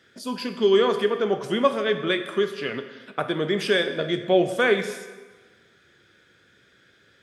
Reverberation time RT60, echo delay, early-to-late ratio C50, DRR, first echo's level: 1.3 s, no echo, 10.0 dB, 8.0 dB, no echo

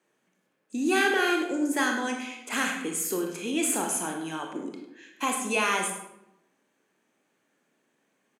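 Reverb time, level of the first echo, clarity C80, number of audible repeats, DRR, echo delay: 0.85 s, -12.5 dB, 7.0 dB, 1, 2.0 dB, 102 ms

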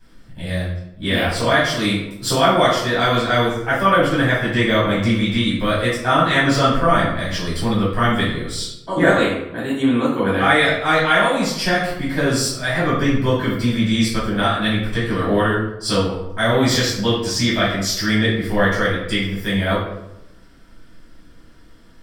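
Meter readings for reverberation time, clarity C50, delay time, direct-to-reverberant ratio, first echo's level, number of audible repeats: 0.90 s, 2.0 dB, no echo, -11.0 dB, no echo, no echo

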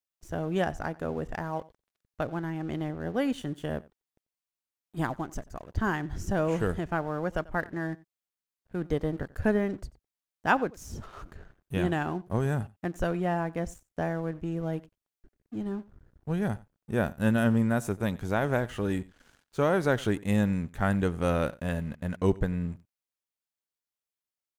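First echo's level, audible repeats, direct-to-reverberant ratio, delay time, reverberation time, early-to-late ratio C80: -22.0 dB, 1, no reverb, 91 ms, no reverb, no reverb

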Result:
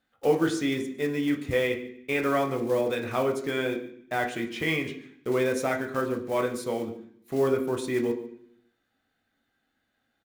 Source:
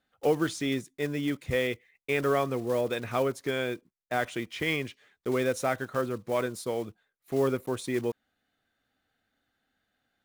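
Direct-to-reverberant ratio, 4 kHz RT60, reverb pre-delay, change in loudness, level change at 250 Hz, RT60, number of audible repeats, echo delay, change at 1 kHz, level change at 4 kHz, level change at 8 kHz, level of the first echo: 2.5 dB, 0.70 s, 14 ms, +2.0 dB, +3.5 dB, 0.65 s, 1, 145 ms, +2.0 dB, +0.5 dB, +0.5 dB, -19.0 dB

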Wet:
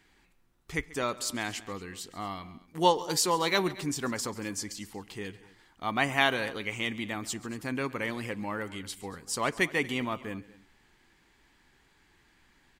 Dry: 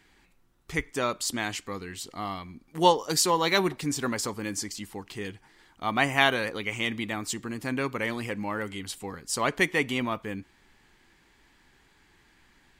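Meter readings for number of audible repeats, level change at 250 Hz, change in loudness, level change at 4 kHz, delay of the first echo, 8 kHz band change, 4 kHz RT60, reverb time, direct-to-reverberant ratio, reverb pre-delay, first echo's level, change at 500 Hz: 2, -3.0 dB, -3.0 dB, -3.0 dB, 137 ms, -3.0 dB, no reverb, no reverb, no reverb, no reverb, -19.5 dB, -3.0 dB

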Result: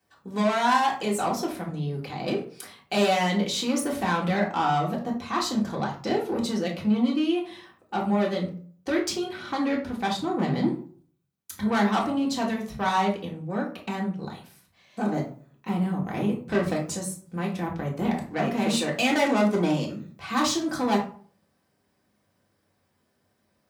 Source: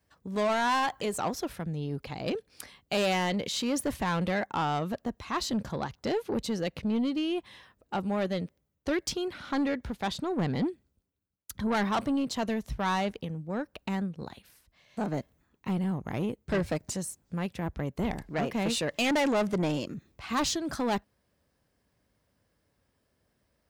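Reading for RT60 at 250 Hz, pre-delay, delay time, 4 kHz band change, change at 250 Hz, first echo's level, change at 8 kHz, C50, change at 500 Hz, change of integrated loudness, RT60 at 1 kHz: 0.55 s, 3 ms, no echo, +3.5 dB, +5.0 dB, no echo, +3.0 dB, 8.0 dB, +4.0 dB, +4.5 dB, 0.45 s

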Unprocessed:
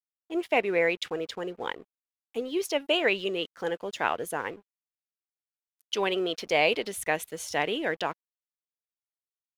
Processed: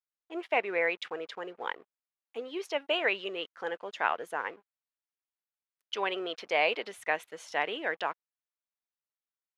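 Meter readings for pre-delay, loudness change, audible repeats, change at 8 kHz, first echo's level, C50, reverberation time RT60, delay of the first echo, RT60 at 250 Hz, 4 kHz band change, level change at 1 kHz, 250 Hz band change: no reverb, -3.5 dB, no echo, -13.0 dB, no echo, no reverb, no reverb, no echo, no reverb, -4.5 dB, -1.5 dB, -9.0 dB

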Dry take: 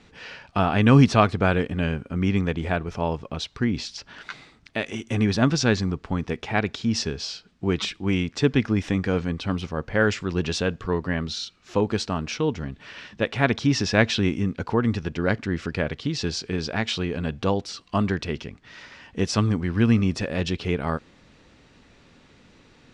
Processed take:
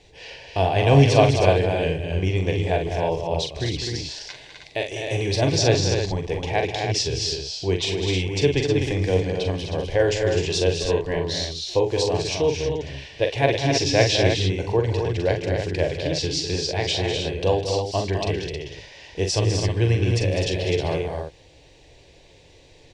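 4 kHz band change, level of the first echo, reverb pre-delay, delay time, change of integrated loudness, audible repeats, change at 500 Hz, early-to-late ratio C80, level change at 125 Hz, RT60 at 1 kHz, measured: +5.5 dB, -6.5 dB, no reverb, 43 ms, +2.0 dB, 5, +6.0 dB, no reverb, +2.5 dB, no reverb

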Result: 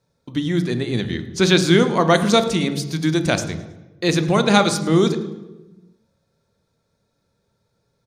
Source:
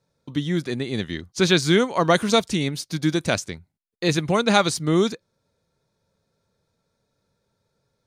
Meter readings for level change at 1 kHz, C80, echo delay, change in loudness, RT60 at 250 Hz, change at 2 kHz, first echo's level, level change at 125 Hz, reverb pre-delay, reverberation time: +3.0 dB, 13.0 dB, 107 ms, +3.0 dB, 1.6 s, +2.5 dB, -19.5 dB, +4.5 dB, 3 ms, 1.1 s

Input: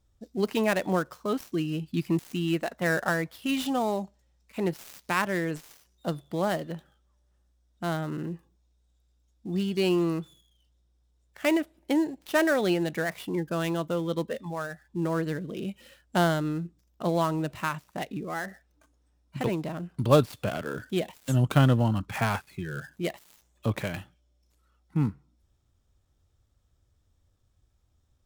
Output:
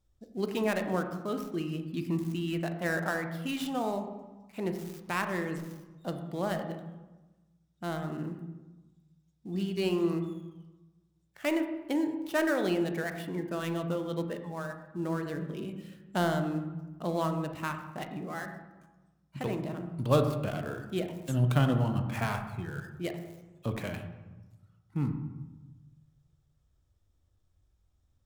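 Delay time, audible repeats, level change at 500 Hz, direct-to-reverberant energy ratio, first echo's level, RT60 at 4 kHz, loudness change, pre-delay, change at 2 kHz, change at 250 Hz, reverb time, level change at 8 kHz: no echo, no echo, -4.0 dB, 6.5 dB, no echo, 0.85 s, -4.0 dB, 3 ms, -4.5 dB, -3.5 dB, 1.2 s, -5.5 dB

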